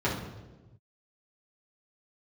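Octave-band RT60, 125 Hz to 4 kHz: 1.8, 1.4, 1.3, 1.0, 0.85, 0.85 s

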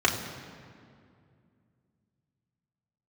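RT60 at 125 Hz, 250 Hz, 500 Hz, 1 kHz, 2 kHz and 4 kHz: 3.4, 3.2, 2.5, 2.2, 1.9, 1.5 s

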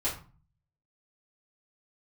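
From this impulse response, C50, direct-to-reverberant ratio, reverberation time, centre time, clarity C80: 7.5 dB, -8.5 dB, 0.40 s, 26 ms, 13.5 dB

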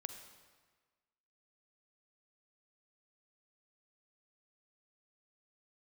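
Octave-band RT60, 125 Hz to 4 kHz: 1.4, 1.4, 1.4, 1.5, 1.4, 1.2 s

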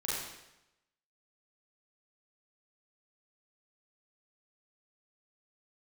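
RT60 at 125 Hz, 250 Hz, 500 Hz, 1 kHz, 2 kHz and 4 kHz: 0.95, 0.90, 0.90, 0.90, 0.90, 0.85 s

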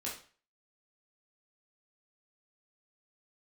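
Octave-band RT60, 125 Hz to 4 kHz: 0.45, 0.40, 0.40, 0.40, 0.40, 0.40 s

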